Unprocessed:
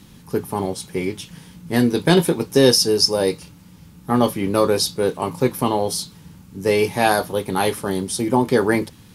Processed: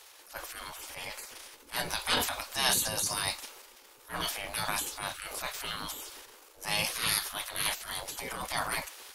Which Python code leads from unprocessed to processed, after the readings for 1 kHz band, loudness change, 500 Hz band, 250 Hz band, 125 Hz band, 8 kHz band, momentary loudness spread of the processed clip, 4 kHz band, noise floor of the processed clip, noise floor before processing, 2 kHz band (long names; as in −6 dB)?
−12.5 dB, −12.5 dB, −24.0 dB, −26.5 dB, −21.0 dB, −5.5 dB, 15 LU, −8.0 dB, −56 dBFS, −46 dBFS, −7.0 dB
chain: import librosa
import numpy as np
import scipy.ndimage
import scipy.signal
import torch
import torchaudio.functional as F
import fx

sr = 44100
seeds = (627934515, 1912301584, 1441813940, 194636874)

y = fx.transient(x, sr, attack_db=-7, sustain_db=6)
y = fx.spec_gate(y, sr, threshold_db=-20, keep='weak')